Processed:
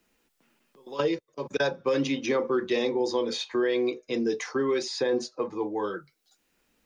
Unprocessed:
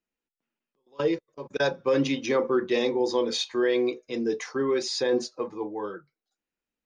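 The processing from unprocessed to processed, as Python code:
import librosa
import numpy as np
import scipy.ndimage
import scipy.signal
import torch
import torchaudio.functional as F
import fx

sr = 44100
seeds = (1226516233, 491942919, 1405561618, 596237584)

y = fx.band_squash(x, sr, depth_pct=70)
y = y * 10.0 ** (-1.5 / 20.0)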